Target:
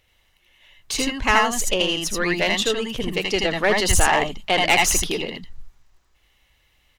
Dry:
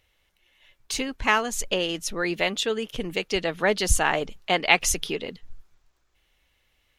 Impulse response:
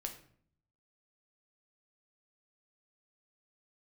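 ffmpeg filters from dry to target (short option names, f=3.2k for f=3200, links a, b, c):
-af "aeval=exprs='(tanh(5.01*val(0)+0.45)-tanh(0.45))/5.01':c=same,aecho=1:1:79|80:0.501|0.708,volume=5dB"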